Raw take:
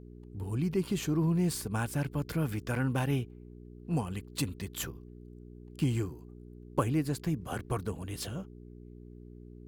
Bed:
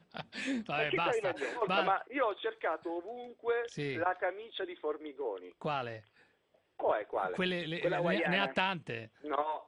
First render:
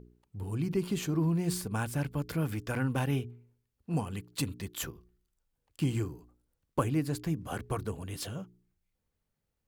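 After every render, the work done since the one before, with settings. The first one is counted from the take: de-hum 60 Hz, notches 7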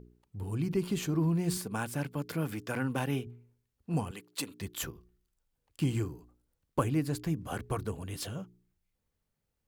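1.57–3.27 HPF 150 Hz; 4.11–4.61 HPF 340 Hz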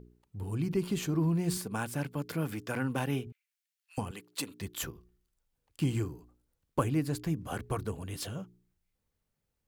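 3.32–3.98 inverse Chebyshev high-pass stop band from 300 Hz, stop band 80 dB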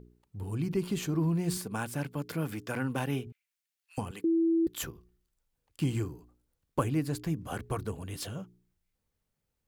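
4.24–4.67 bleep 330 Hz -22.5 dBFS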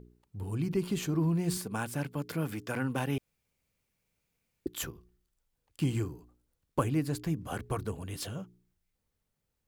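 3.18–4.66 room tone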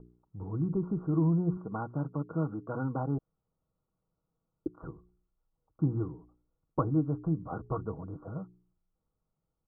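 Chebyshev low-pass 1400 Hz, order 8; comb 6.3 ms, depth 35%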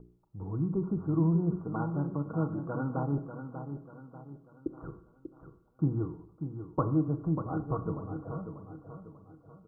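on a send: feedback echo 0.591 s, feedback 42%, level -9 dB; on the sum: Schroeder reverb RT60 0.76 s, combs from 28 ms, DRR 11 dB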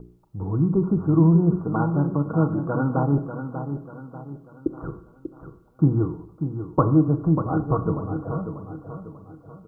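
gain +10 dB

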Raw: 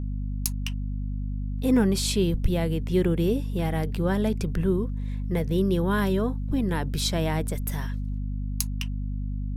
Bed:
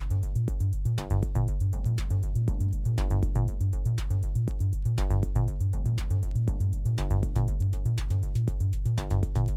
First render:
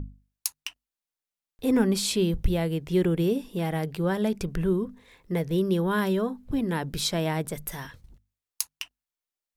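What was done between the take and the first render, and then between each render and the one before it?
notches 50/100/150/200/250 Hz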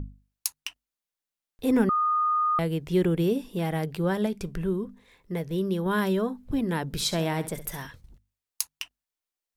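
1.89–2.59 bleep 1230 Hz -21 dBFS; 4.26–5.86 resonator 200 Hz, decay 0.17 s, mix 40%; 6.84–7.82 flutter echo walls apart 11.4 m, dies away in 0.31 s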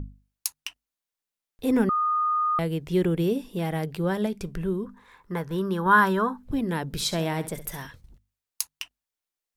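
4.86–6.43 band shelf 1200 Hz +13 dB 1.2 oct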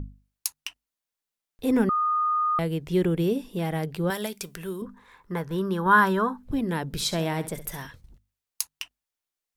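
4.1–4.82 tilt +3.5 dB/oct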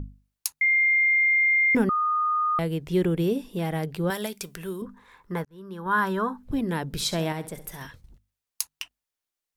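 0.61–1.75 bleep 2110 Hz -17.5 dBFS; 5.45–6.43 fade in; 7.32–7.81 resonator 60 Hz, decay 1.9 s, mix 40%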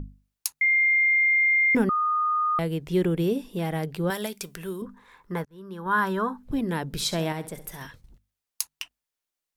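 bell 76 Hz -4.5 dB 0.77 oct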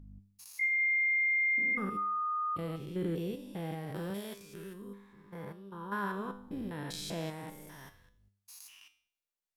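stepped spectrum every 0.2 s; resonator 100 Hz, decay 0.54 s, harmonics all, mix 70%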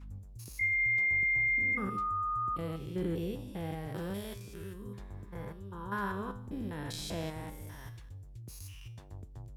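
add bed -21 dB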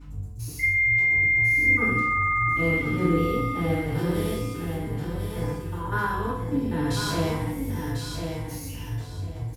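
feedback echo 1.046 s, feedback 24%, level -6 dB; FDN reverb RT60 0.58 s, low-frequency decay 1.35×, high-frequency decay 0.95×, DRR -9 dB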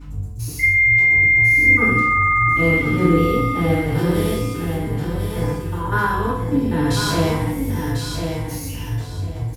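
gain +7 dB

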